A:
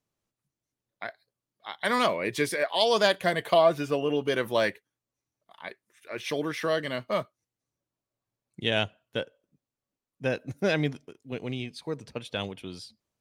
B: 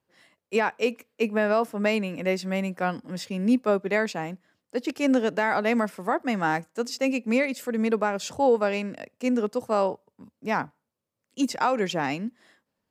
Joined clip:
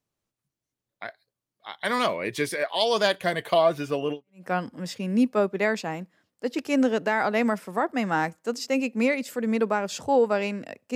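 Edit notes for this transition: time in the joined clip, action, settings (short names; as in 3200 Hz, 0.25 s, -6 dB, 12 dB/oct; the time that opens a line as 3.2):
A
4.28 switch to B from 2.59 s, crossfade 0.32 s exponential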